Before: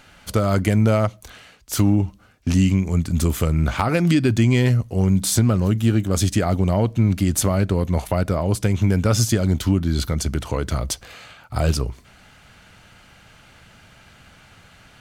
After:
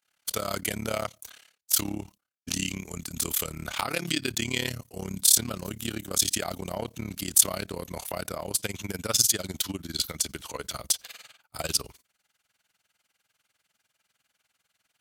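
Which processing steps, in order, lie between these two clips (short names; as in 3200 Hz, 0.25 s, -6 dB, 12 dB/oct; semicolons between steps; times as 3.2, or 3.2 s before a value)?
RIAA curve recording; expander -34 dBFS; dynamic EQ 3500 Hz, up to +6 dB, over -35 dBFS, Q 1.4; AM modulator 35 Hz, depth 85%, from 8.5 s modulator 20 Hz; gain -5 dB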